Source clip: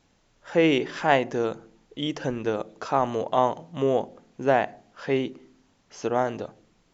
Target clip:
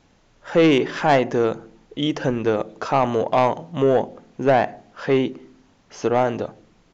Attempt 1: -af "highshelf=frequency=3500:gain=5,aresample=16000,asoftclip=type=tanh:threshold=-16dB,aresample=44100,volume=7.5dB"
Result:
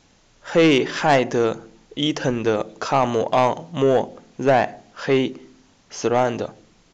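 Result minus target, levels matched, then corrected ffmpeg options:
8,000 Hz band +7.0 dB
-af "highshelf=frequency=3500:gain=-5,aresample=16000,asoftclip=type=tanh:threshold=-16dB,aresample=44100,volume=7.5dB"

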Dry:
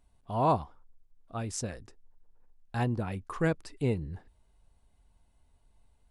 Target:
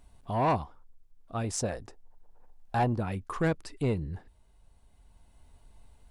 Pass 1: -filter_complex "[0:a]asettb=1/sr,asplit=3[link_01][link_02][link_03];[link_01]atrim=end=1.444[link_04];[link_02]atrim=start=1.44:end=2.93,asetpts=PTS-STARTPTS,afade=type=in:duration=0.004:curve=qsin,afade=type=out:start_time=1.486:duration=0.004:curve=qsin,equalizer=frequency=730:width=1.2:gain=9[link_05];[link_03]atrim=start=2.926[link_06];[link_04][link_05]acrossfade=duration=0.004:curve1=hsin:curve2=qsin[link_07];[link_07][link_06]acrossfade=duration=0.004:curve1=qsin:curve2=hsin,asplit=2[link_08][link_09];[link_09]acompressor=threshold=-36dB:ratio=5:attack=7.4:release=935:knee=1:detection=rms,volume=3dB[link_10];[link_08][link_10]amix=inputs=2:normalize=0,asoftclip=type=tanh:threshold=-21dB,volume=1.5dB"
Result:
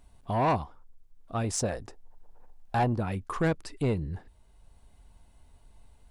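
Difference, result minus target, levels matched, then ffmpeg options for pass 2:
downward compressor: peak gain reduction −9 dB
-filter_complex "[0:a]asettb=1/sr,asplit=3[link_01][link_02][link_03];[link_01]atrim=end=1.444[link_04];[link_02]atrim=start=1.44:end=2.93,asetpts=PTS-STARTPTS,afade=type=in:duration=0.004:curve=qsin,afade=type=out:start_time=1.486:duration=0.004:curve=qsin,equalizer=frequency=730:width=1.2:gain=9[link_05];[link_03]atrim=start=2.926[link_06];[link_04][link_05]acrossfade=duration=0.004:curve1=hsin:curve2=qsin[link_07];[link_07][link_06]acrossfade=duration=0.004:curve1=qsin:curve2=hsin,asplit=2[link_08][link_09];[link_09]acompressor=threshold=-47.5dB:ratio=5:attack=7.4:release=935:knee=1:detection=rms,volume=3dB[link_10];[link_08][link_10]amix=inputs=2:normalize=0,asoftclip=type=tanh:threshold=-21dB,volume=1.5dB"

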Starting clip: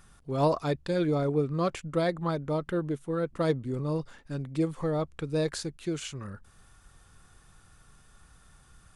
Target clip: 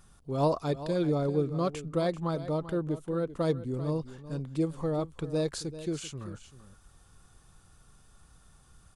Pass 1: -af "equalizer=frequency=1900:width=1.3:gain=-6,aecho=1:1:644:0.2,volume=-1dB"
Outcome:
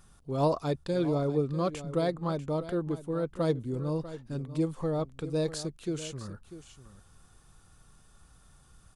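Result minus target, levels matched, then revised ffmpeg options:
echo 255 ms late
-af "equalizer=frequency=1900:width=1.3:gain=-6,aecho=1:1:389:0.2,volume=-1dB"

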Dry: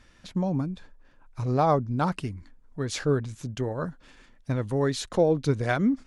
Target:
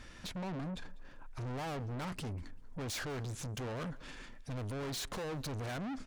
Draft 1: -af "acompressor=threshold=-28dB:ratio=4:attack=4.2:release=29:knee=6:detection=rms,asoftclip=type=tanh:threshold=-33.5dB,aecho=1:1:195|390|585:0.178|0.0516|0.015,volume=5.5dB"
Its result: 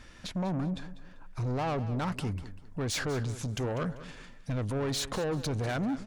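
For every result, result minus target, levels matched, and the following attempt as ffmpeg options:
echo-to-direct +9 dB; soft clipping: distortion −5 dB
-af "acompressor=threshold=-28dB:ratio=4:attack=4.2:release=29:knee=6:detection=rms,asoftclip=type=tanh:threshold=-33.5dB,aecho=1:1:195|390:0.0631|0.0183,volume=5.5dB"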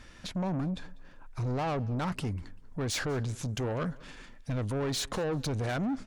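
soft clipping: distortion −5 dB
-af "acompressor=threshold=-28dB:ratio=4:attack=4.2:release=29:knee=6:detection=rms,asoftclip=type=tanh:threshold=-43.5dB,aecho=1:1:195|390:0.0631|0.0183,volume=5.5dB"

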